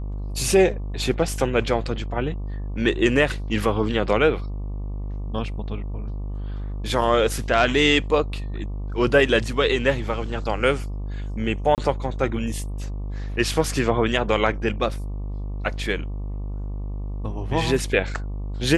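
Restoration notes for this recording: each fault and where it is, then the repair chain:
mains buzz 50 Hz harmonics 24 −29 dBFS
0:11.75–0:11.78: drop-out 28 ms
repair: hum removal 50 Hz, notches 24
repair the gap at 0:11.75, 28 ms

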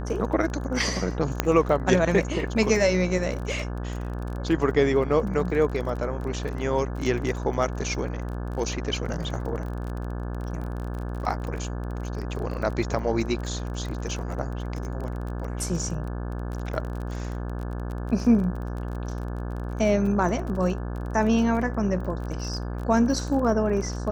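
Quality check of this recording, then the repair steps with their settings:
mains buzz 60 Hz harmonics 29 −31 dBFS
surface crackle 26 per second −32 dBFS
0:01.40: click −6 dBFS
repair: click removal
hum removal 60 Hz, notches 29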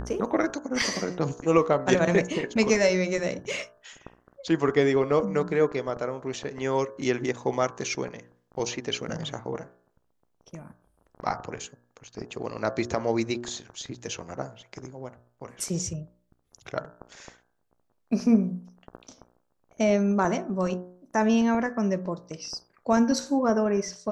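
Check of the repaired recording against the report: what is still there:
none of them is left

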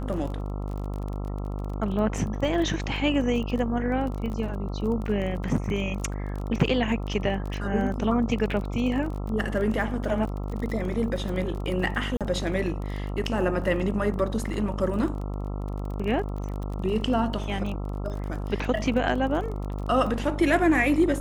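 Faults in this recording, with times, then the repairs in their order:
mains buzz 50 Hz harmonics 27 −31 dBFS
surface crackle 23 per second −32 dBFS
0:12.17–0:12.21: drop-out 37 ms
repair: click removal
hum removal 50 Hz, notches 27
repair the gap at 0:12.17, 37 ms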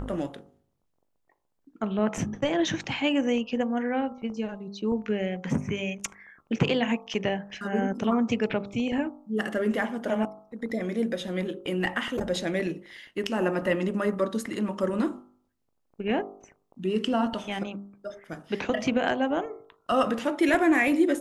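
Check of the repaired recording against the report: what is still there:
none of them is left

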